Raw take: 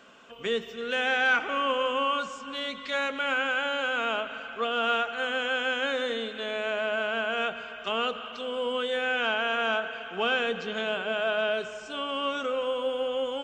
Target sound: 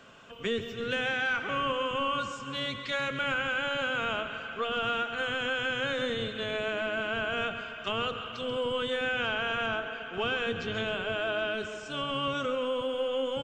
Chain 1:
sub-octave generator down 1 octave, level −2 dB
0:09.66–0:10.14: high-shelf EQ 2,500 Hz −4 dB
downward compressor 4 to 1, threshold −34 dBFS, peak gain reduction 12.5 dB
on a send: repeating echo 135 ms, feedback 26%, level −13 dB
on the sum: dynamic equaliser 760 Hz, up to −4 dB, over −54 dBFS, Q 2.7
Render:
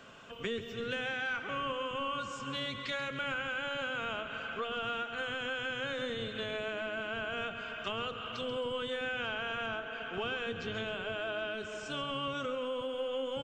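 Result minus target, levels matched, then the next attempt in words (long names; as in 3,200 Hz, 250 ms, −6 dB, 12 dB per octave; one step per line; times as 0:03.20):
downward compressor: peak gain reduction +6 dB
sub-octave generator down 1 octave, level −2 dB
0:09.66–0:10.14: high-shelf EQ 2,500 Hz −4 dB
downward compressor 4 to 1, threshold −26 dBFS, peak gain reduction 6.5 dB
on a send: repeating echo 135 ms, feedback 26%, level −13 dB
on the sum: dynamic equaliser 760 Hz, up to −4 dB, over −54 dBFS, Q 2.7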